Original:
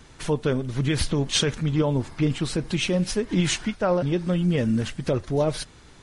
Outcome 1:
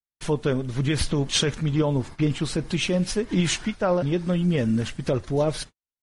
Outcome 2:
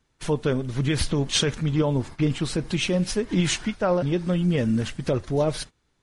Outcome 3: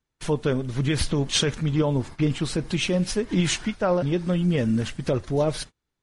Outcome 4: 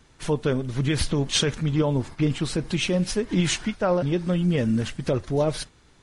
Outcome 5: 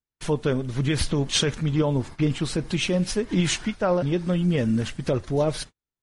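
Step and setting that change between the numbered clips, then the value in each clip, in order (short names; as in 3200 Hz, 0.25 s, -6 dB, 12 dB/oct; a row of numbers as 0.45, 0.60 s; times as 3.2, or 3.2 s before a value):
gate, range: -58, -21, -33, -7, -46 dB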